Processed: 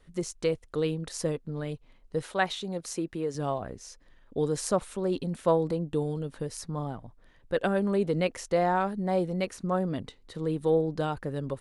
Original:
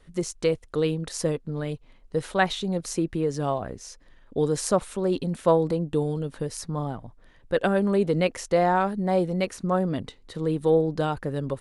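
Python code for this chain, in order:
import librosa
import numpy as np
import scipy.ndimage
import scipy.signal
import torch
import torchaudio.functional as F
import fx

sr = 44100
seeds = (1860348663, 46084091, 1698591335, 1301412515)

y = fx.low_shelf(x, sr, hz=150.0, db=-11.0, at=(2.23, 3.35))
y = y * librosa.db_to_amplitude(-4.0)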